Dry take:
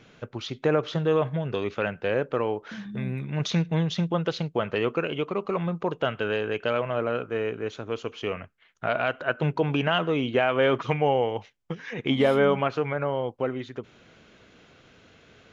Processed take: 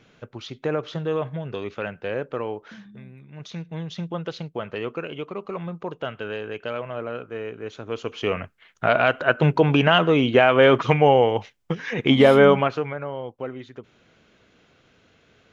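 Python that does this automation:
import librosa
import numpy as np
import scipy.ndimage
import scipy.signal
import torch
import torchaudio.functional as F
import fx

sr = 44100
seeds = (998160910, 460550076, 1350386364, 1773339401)

y = fx.gain(x, sr, db=fx.line((2.66, -2.5), (3.12, -15.0), (4.1, -4.0), (7.55, -4.0), (8.38, 7.0), (12.5, 7.0), (13.01, -4.0)))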